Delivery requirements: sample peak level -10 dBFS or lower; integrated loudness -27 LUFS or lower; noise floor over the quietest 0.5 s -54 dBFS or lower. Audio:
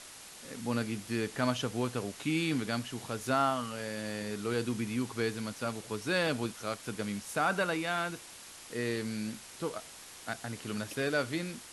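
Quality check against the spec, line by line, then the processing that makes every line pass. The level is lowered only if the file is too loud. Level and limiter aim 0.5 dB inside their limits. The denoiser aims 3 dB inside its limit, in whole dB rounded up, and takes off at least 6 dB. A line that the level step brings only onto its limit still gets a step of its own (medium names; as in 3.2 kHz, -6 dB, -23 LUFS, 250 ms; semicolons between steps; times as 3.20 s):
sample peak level -16.5 dBFS: pass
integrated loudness -34.0 LUFS: pass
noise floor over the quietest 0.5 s -50 dBFS: fail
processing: noise reduction 7 dB, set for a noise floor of -50 dBFS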